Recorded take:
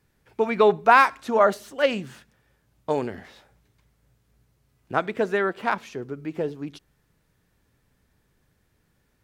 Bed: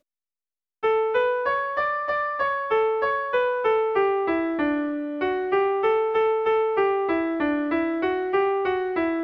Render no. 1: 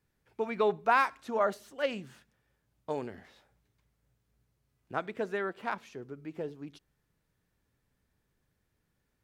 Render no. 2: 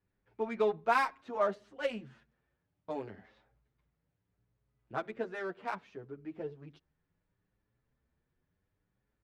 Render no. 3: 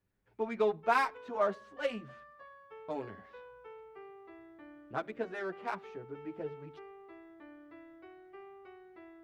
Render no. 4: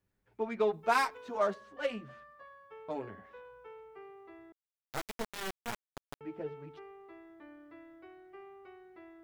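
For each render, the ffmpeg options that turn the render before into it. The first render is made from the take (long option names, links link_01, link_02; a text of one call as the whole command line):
ffmpeg -i in.wav -af "volume=-10dB" out.wav
ffmpeg -i in.wav -filter_complex "[0:a]adynamicsmooth=sensitivity=6.5:basefreq=3200,asplit=2[link_01][link_02];[link_02]adelay=7.8,afreqshift=0.69[link_03];[link_01][link_03]amix=inputs=2:normalize=1" out.wav
ffmpeg -i in.wav -i bed.wav -filter_complex "[1:a]volume=-29.5dB[link_01];[0:a][link_01]amix=inputs=2:normalize=0" out.wav
ffmpeg -i in.wav -filter_complex "[0:a]asettb=1/sr,asplit=3[link_01][link_02][link_03];[link_01]atrim=end=0.734[link_04];[link_02]atrim=start=0.73:end=1.54,asetpts=PTS-STARTPTS,afade=type=in:duration=0.004:curve=qsin,afade=type=out:start_time=0.806:duration=0.004:curve=qsin,bass=frequency=250:gain=1,treble=frequency=4000:gain=9[link_05];[link_03]atrim=start=1.536[link_06];[link_04][link_05]acrossfade=duration=0.004:curve1=hsin:curve2=qsin[link_07];[link_07][link_06]acrossfade=duration=0.004:curve1=qsin:curve2=hsin,asettb=1/sr,asplit=3[link_08][link_09][link_10];[link_08]atrim=end=2.984[link_11];[link_09]atrim=start=2.98:end=3.45,asetpts=PTS-STARTPTS,afade=type=in:duration=0.004:curve=qsin,afade=type=out:start_time=0.466:duration=0.004:curve=qsin,equalizer=frequency=4500:width_type=o:width=0.77:gain=-7.5[link_12];[link_10]atrim=start=3.446[link_13];[link_11][link_12]acrossfade=duration=0.004:curve1=hsin:curve2=qsin[link_14];[link_14][link_13]acrossfade=duration=0.004:curve1=qsin:curve2=hsin,asettb=1/sr,asplit=3[link_15][link_16][link_17];[link_15]atrim=end=4.524[link_18];[link_16]atrim=start=4.52:end=6.21,asetpts=PTS-STARTPTS,afade=type=in:duration=0.004:curve=qsin,afade=type=out:start_time=1.686:duration=0.004:curve=qsin,acrusher=bits=3:dc=4:mix=0:aa=0.000001[link_19];[link_17]atrim=start=6.206[link_20];[link_18][link_19]acrossfade=duration=0.004:curve1=hsin:curve2=qsin[link_21];[link_21][link_20]acrossfade=duration=0.004:curve1=qsin:curve2=hsin" out.wav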